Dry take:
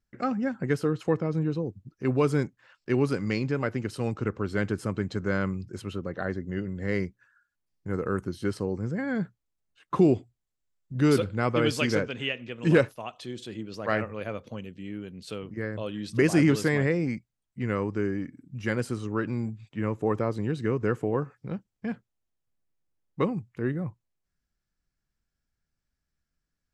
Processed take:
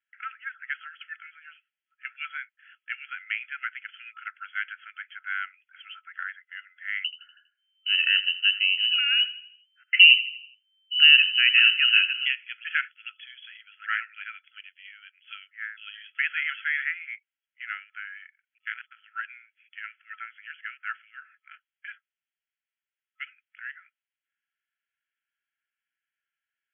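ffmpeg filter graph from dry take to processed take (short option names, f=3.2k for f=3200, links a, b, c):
-filter_complex "[0:a]asettb=1/sr,asplit=3[a][b][c];[a]atrim=end=7.044[d];[b]atrim=start=7.04:end=12.26,asetpts=PTS-STARTPTS,afade=t=in:d=0.004:c=qsin,afade=t=out:st=5.216:d=0.004:c=qsin,asplit=2[e][f];[f]adelay=81,lowpass=f=2.1k:p=1,volume=-14.5dB,asplit=2[g][h];[h]adelay=81,lowpass=f=2.1k:p=1,volume=0.49,asplit=2[i][j];[j]adelay=81,lowpass=f=2.1k:p=1,volume=0.49,asplit=2[k][l];[l]adelay=81,lowpass=f=2.1k:p=1,volume=0.49,asplit=2[m][n];[n]adelay=81,lowpass=f=2.1k:p=1,volume=0.49[o];[e][g][i][k][m][o]amix=inputs=6:normalize=0,atrim=end_sample=230202,lowpass=f=2.6k:t=q:w=0.5098,lowpass=f=2.6k:t=q:w=0.6013,lowpass=f=2.6k:t=q:w=0.9,lowpass=f=2.6k:t=q:w=2.563,afreqshift=-3100[p];[c]atrim=start=12.256[q];[d][p]acrossfade=d=0.004:c1=hsin:c2=qsin[r];[r][q]acrossfade=d=0.004:c1=qsin:c2=hsin,asettb=1/sr,asplit=3[s][t][u];[s]atrim=end=18.584[v];[t]atrim=start=18.58:end=19.07,asetpts=PTS-STARTPTS,afade=t=in:d=0.004:c=qsin,afade=t=out:st=0.486:d=0.004:c=qsin,aeval=exprs='if(lt(val(0),0),0.447*val(0),val(0))':c=same,agate=range=-30dB:threshold=-37dB:ratio=16:release=100:detection=peak,tremolo=f=160:d=0.788[w];[u]atrim=start=19.066[x];[v][w]acrossfade=d=0.004:c1=hsin:c2=qsin[y];[y][x]acrossfade=d=0.004:c1=qsin:c2=hsin,afftfilt=real='re*between(b*sr/4096,1300,3400)':imag='im*between(b*sr/4096,1300,3400)':win_size=4096:overlap=0.75,equalizer=f=2.5k:w=0.65:g=9,volume=-2.5dB"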